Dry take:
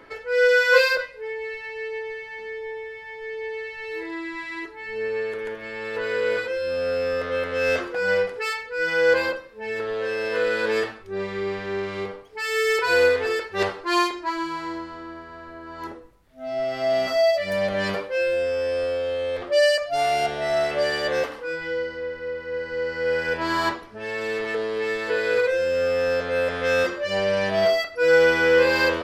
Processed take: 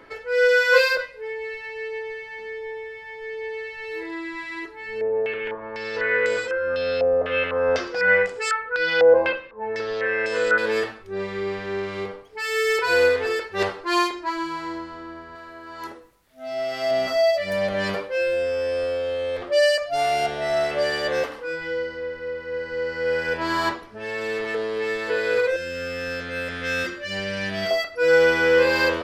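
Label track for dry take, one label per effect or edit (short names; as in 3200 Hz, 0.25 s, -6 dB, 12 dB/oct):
5.010000	10.580000	stepped low-pass 4 Hz 720–7600 Hz
15.350000	16.910000	tilt +2 dB/oct
25.560000	27.710000	band shelf 700 Hz -10 dB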